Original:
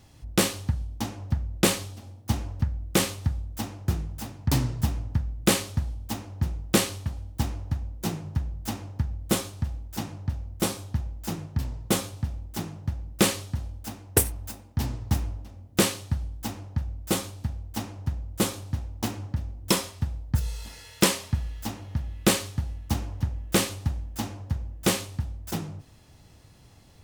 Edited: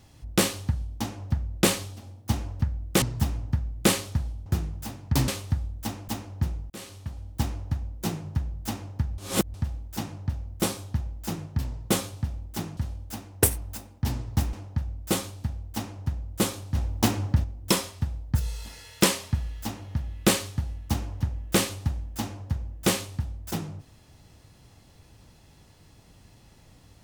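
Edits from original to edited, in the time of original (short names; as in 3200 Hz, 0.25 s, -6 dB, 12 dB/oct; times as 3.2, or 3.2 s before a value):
3.02–3.82 swap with 4.64–6.08
6.7–7.35 fade in
9.18–9.54 reverse
12.77–13.51 cut
15.27–16.53 cut
18.75–19.44 gain +7 dB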